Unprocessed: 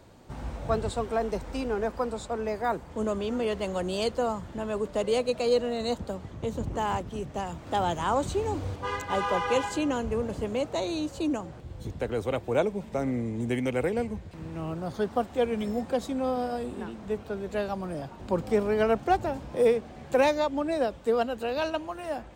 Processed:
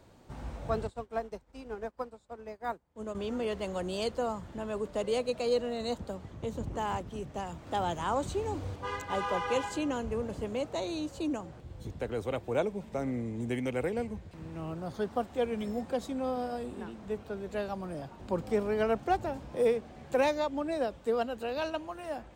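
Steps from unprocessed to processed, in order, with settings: 0.87–3.15 upward expander 2.5:1, over -41 dBFS; gain -4.5 dB

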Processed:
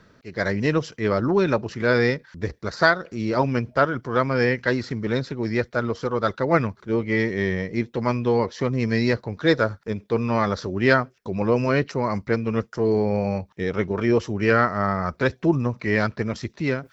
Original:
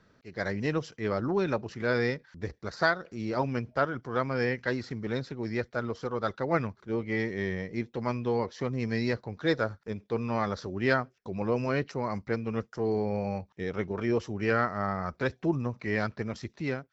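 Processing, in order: notch 770 Hz, Q 12; reverse; upward compressor, threshold -47 dBFS; reverse; gain +8 dB

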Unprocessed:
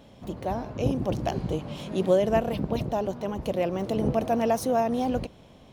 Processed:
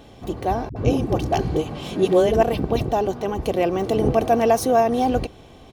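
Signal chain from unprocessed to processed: comb 2.6 ms, depth 42%; 0.69–2.43 dispersion highs, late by 71 ms, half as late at 340 Hz; gain +6.5 dB

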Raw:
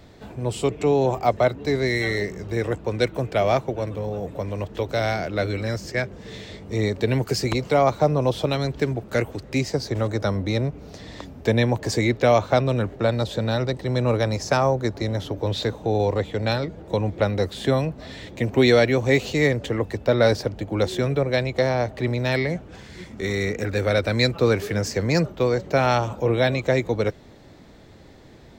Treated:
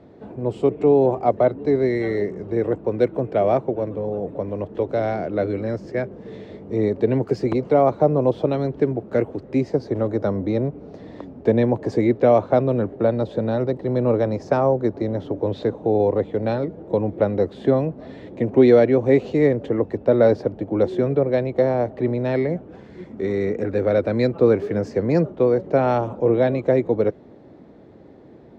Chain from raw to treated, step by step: band-pass 350 Hz, Q 0.81; gain +5 dB

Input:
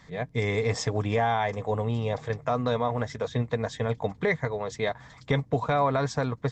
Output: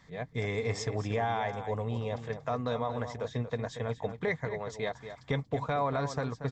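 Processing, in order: outdoor echo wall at 40 m, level -10 dB; gain -6 dB

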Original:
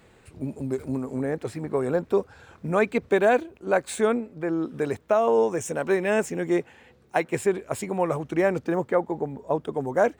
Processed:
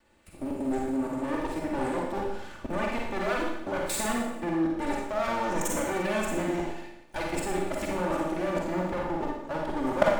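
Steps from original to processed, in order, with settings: minimum comb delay 3.4 ms; level quantiser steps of 18 dB; Schroeder reverb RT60 0.85 s, DRR -2 dB; gain +4.5 dB

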